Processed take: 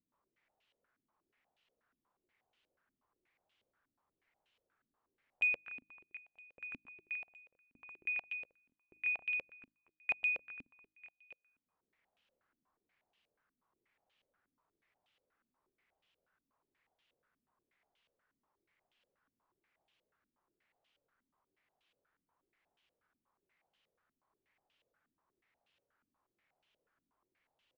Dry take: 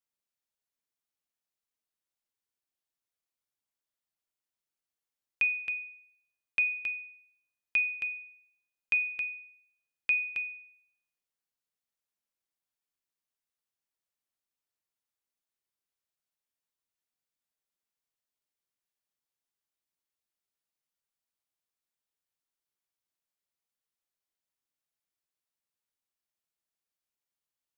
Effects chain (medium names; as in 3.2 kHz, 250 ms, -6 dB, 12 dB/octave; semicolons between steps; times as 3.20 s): de-hum 52.29 Hz, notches 6; expander -56 dBFS; upward compressor, threshold -33 dBFS; saturation -24.5 dBFS, distortion -15 dB; on a send: reverse bouncing-ball echo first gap 140 ms, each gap 1.15×, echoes 5; on the sum: step-sequenced low-pass 8.3 Hz 260–3000 Hz; trim -9 dB